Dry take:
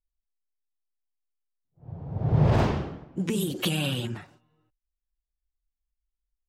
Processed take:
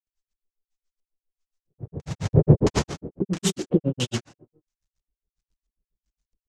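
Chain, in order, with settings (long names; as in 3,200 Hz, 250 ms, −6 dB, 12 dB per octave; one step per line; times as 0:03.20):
one scale factor per block 3 bits
granular cloud 100 ms, grains 7.3 per second, pitch spread up and down by 0 semitones
auto-filter low-pass square 1.5 Hz 430–6,600 Hz
level +7.5 dB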